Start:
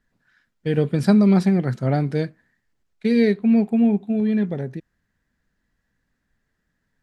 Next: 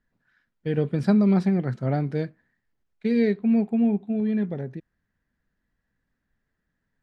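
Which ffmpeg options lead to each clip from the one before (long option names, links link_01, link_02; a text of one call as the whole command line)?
ffmpeg -i in.wav -af "aemphasis=mode=reproduction:type=50kf,volume=-4dB" out.wav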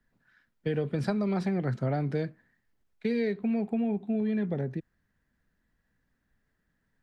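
ffmpeg -i in.wav -filter_complex "[0:a]acrossover=split=110|360|1400[link_01][link_02][link_03][link_04];[link_02]alimiter=level_in=2.5dB:limit=-24dB:level=0:latency=1,volume=-2.5dB[link_05];[link_01][link_05][link_03][link_04]amix=inputs=4:normalize=0,acompressor=threshold=-27dB:ratio=6,volume=2dB" out.wav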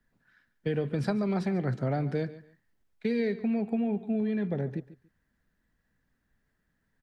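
ffmpeg -i in.wav -af "aecho=1:1:142|284:0.15|0.0314" out.wav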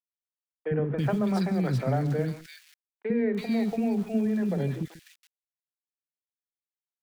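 ffmpeg -i in.wav -filter_complex "[0:a]aeval=exprs='val(0)*gte(abs(val(0)),0.00501)':channel_layout=same,acrossover=split=360|2100[link_01][link_02][link_03];[link_01]adelay=50[link_04];[link_03]adelay=330[link_05];[link_04][link_02][link_05]amix=inputs=3:normalize=0,volume=4dB" out.wav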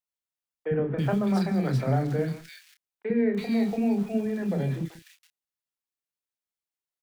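ffmpeg -i in.wav -filter_complex "[0:a]asplit=2[link_01][link_02];[link_02]adelay=30,volume=-7dB[link_03];[link_01][link_03]amix=inputs=2:normalize=0" out.wav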